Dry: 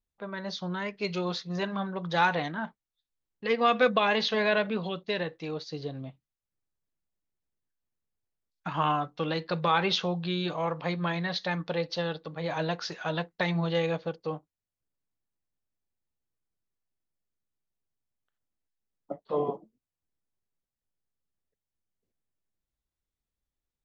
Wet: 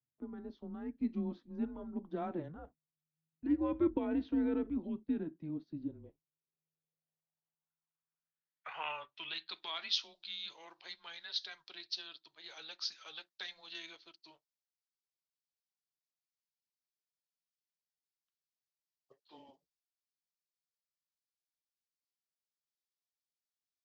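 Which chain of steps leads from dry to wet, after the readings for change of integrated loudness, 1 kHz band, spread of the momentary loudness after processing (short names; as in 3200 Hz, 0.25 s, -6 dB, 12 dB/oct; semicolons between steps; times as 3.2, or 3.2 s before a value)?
-9.5 dB, -19.0 dB, 16 LU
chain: frequency shift -160 Hz; band-pass sweep 240 Hz -> 4800 Hz, 5.86–9.85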